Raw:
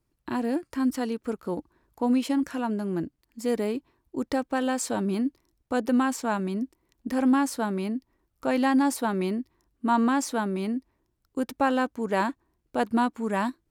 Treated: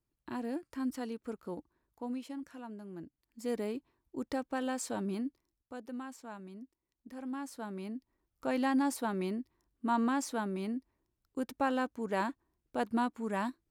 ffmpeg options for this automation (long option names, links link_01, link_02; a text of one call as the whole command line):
ffmpeg -i in.wav -af "volume=10dB,afade=type=out:start_time=1.47:duration=0.79:silence=0.446684,afade=type=in:start_time=2.96:duration=0.55:silence=0.375837,afade=type=out:start_time=5.09:duration=0.69:silence=0.298538,afade=type=in:start_time=7.27:duration=1.2:silence=0.266073" out.wav